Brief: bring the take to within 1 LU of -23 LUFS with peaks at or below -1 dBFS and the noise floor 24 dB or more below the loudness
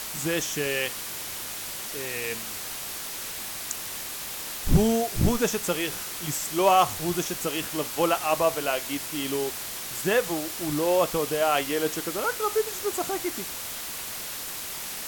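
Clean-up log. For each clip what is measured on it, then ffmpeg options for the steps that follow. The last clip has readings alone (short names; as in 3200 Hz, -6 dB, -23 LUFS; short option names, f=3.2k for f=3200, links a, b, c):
noise floor -35 dBFS; noise floor target -51 dBFS; loudness -27.0 LUFS; peak -9.0 dBFS; loudness target -23.0 LUFS
-> -af "afftdn=nr=16:nf=-35"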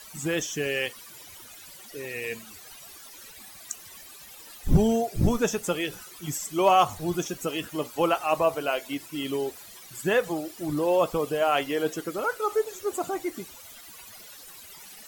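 noise floor -47 dBFS; noise floor target -51 dBFS
-> -af "afftdn=nr=6:nf=-47"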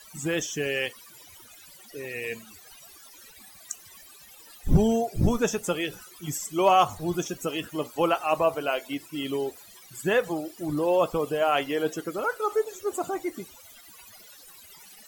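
noise floor -51 dBFS; loudness -27.0 LUFS; peak -9.5 dBFS; loudness target -23.0 LUFS
-> -af "volume=4dB"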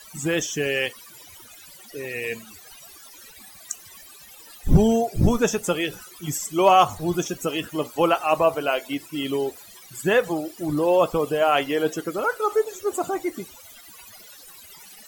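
loudness -23.0 LUFS; peak -5.5 dBFS; noise floor -47 dBFS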